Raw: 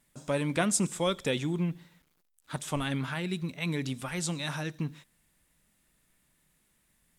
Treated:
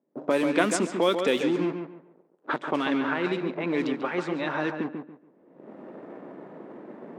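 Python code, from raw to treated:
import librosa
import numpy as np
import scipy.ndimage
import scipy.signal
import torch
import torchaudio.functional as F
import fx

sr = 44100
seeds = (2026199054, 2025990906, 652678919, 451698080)

p1 = fx.recorder_agc(x, sr, target_db=-23.5, rise_db_per_s=34.0, max_gain_db=30)
p2 = fx.quant_dither(p1, sr, seeds[0], bits=6, dither='none')
p3 = p1 + F.gain(torch.from_numpy(p2), -4.0).numpy()
p4 = scipy.signal.sosfilt(scipy.signal.butter(4, 340.0, 'highpass', fs=sr, output='sos'), p3)
p5 = fx.tilt_eq(p4, sr, slope=-3.5)
p6 = fx.env_lowpass(p5, sr, base_hz=440.0, full_db=-21.0)
p7 = fx.dynamic_eq(p6, sr, hz=610.0, q=0.89, threshold_db=-36.0, ratio=4.0, max_db=-7)
p8 = p7 + fx.echo_filtered(p7, sr, ms=142, feedback_pct=27, hz=2500.0, wet_db=-6.0, dry=0)
y = F.gain(torch.from_numpy(p8), 5.0).numpy()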